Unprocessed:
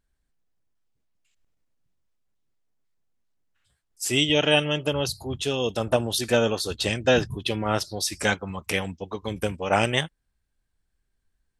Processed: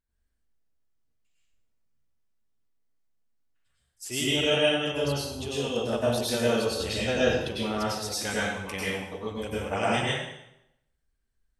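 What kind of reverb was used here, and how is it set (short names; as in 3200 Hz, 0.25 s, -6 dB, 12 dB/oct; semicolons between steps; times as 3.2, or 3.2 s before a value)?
plate-style reverb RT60 0.83 s, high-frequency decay 0.9×, pre-delay 85 ms, DRR -7.5 dB; gain -11 dB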